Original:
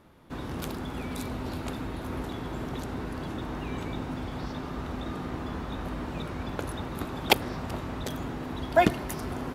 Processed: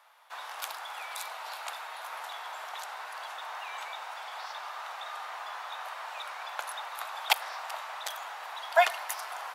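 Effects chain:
Butterworth high-pass 720 Hz 36 dB per octave
boost into a limiter +9 dB
level −6 dB

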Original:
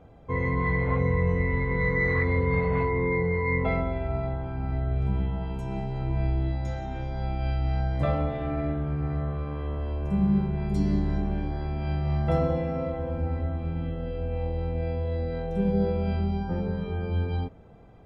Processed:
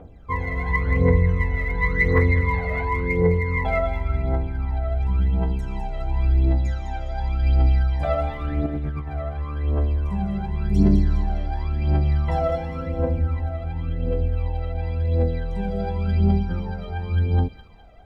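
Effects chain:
parametric band 130 Hz −10.5 dB 0.52 octaves
0:08.66–0:09.08: compressor whose output falls as the input rises −33 dBFS, ratio −0.5
phase shifter 0.92 Hz, delay 1.6 ms, feedback 74%
on a send: delay with a high-pass on its return 205 ms, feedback 43%, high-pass 2,000 Hz, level −7 dB

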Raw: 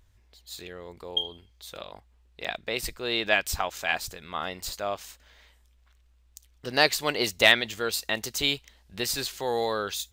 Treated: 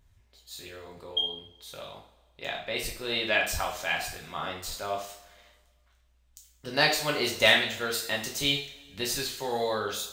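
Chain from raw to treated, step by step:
coupled-rooms reverb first 0.48 s, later 1.6 s, from −17 dB, DRR −1.5 dB
level −5 dB

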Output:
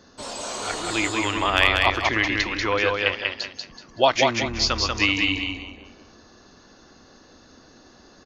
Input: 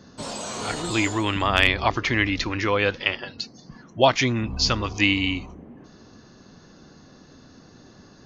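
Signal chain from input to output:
parametric band 150 Hz −12 dB 1.4 octaves
repeating echo 189 ms, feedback 29%, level −3 dB

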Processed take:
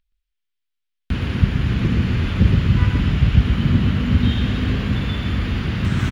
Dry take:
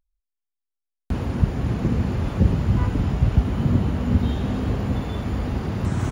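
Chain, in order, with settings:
stylus tracing distortion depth 0.046 ms
drawn EQ curve 190 Hz 0 dB, 790 Hz −9 dB, 1,500 Hz +4 dB, 3,200 Hz +9 dB, 7,000 Hz −4 dB
single-tap delay 122 ms −5.5 dB
level +3 dB

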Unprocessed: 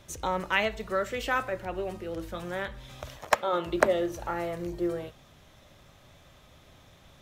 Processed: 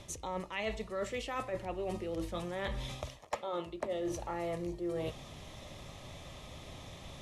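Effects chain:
Butterworth low-pass 12,000 Hz 96 dB per octave
parametric band 1,500 Hz −14 dB 0.23 octaves
reversed playback
downward compressor 16 to 1, threshold −41 dBFS, peak gain reduction 26 dB
reversed playback
level +7.5 dB

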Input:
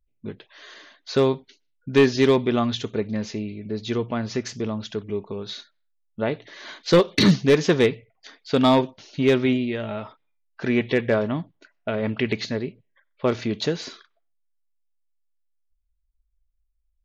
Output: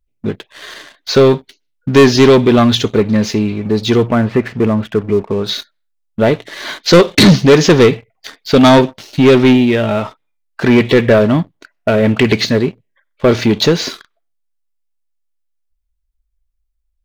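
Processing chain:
0:04.08–0:05.44: low-pass filter 2,500 Hz 24 dB per octave
leveller curve on the samples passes 2
level +7.5 dB

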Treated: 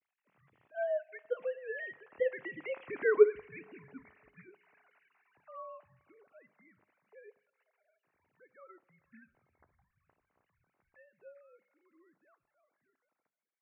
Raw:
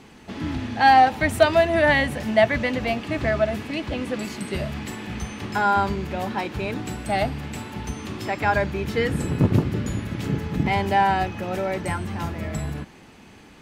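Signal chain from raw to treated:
three sine waves on the formant tracks
source passing by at 0:03.09, 24 m/s, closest 5.1 metres
high-pass filter 220 Hz
low-shelf EQ 490 Hz −10.5 dB
mains-hum notches 50/100/150/200/250/300/350/400 Hz
coupled-rooms reverb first 0.38 s, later 2.5 s, from −18 dB, DRR 15.5 dB
single-sideband voice off tune −200 Hz 310–2,900 Hz

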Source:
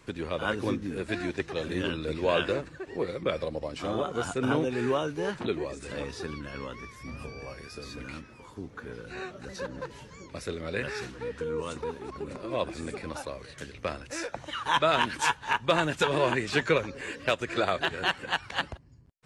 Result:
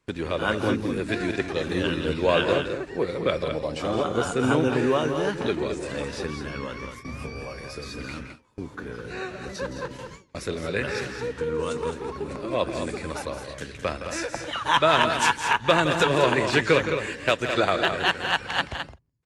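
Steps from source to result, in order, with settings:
on a send: loudspeakers that aren't time-aligned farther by 57 metres −11 dB, 73 metres −8 dB
on the sum: noise gate with hold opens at −33 dBFS
level +4.5 dB

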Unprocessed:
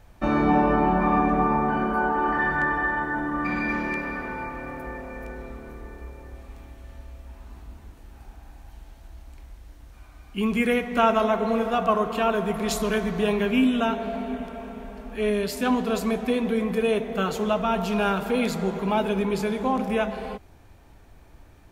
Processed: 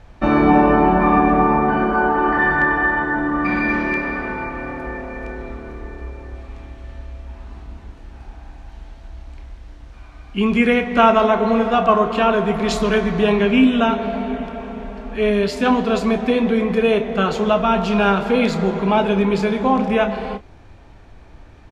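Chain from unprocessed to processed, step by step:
low-pass filter 5,100 Hz 12 dB per octave
double-tracking delay 30 ms −12 dB
level +7 dB

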